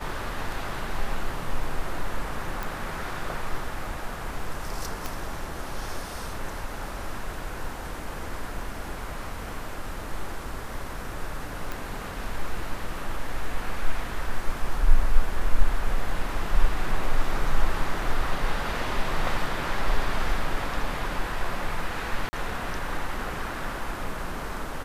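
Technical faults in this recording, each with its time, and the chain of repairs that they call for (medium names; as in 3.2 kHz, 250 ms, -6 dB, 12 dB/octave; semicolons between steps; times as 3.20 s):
2.63 s: pop
5.06 s: pop
11.72 s: pop
22.29–22.33 s: dropout 40 ms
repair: de-click; interpolate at 22.29 s, 40 ms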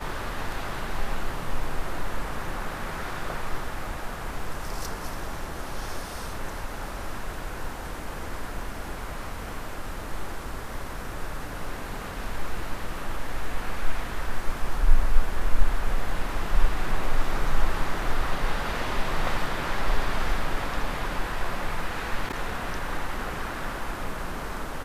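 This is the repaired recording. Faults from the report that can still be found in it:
5.06 s: pop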